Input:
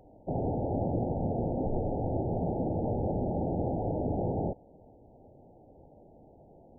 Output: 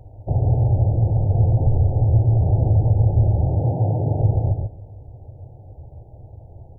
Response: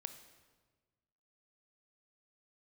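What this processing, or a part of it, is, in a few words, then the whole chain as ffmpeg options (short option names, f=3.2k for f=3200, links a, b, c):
car stereo with a boomy subwoofer: -filter_complex "[0:a]asettb=1/sr,asplit=3[a][b][c];[a]atrim=end=3.484[d];[b]atrim=start=3.48:end=4.2,asetpts=PTS-STARTPTS,afade=t=in:d=0.004:c=qsin,afade=t=out:st=0.716:d=0.004:c=qsin,highpass=f=120:w=0.5412,highpass=f=120:w=1.3066[e];[c]atrim=start=4.196[f];[d][e]acrossfade=d=0.004:c1=hsin:c2=qsin[g];[g][f]acrossfade=d=0.004:c1=qsin:c2=hsin,lowshelf=f=150:t=q:w=3:g=11.5,alimiter=limit=-15.5dB:level=0:latency=1:release=256,asplit=2[h][i];[i]adelay=141,lowpass=f=810:p=1,volume=-4dB,asplit=2[j][k];[k]adelay=141,lowpass=f=810:p=1,volume=0.18,asplit=2[l][m];[m]adelay=141,lowpass=f=810:p=1,volume=0.18[n];[h][j][l][n]amix=inputs=4:normalize=0,volume=5dB"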